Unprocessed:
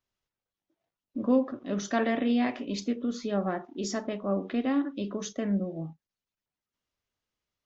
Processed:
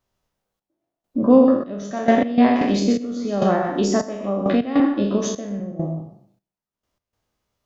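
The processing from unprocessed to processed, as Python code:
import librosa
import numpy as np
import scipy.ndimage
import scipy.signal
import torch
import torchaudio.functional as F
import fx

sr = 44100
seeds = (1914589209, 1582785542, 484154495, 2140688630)

y = fx.spec_trails(x, sr, decay_s=0.63)
y = fx.peak_eq(y, sr, hz=680.0, db=11.5, octaves=2.5)
y = y + 10.0 ** (-6.5 / 20.0) * np.pad(y, (int(125 * sr / 1000.0), 0))[:len(y)]
y = fx.step_gate(y, sr, bpm=101, pattern='xxxx...xxxx...x.', floor_db=-12.0, edge_ms=4.5)
y = fx.bass_treble(y, sr, bass_db=10, treble_db=6)
y = fx.band_squash(y, sr, depth_pct=70, at=(2.61, 4.8))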